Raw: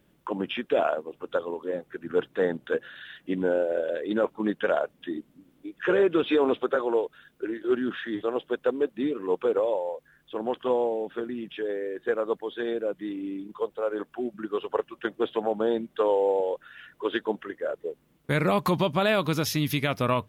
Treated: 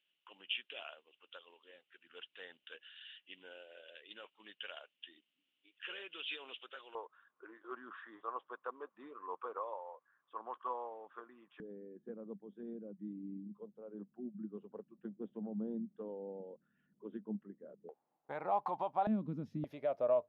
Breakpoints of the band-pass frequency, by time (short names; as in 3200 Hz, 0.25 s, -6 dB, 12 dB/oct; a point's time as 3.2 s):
band-pass, Q 6.7
2900 Hz
from 6.95 s 1100 Hz
from 11.6 s 200 Hz
from 17.89 s 800 Hz
from 19.07 s 220 Hz
from 19.64 s 610 Hz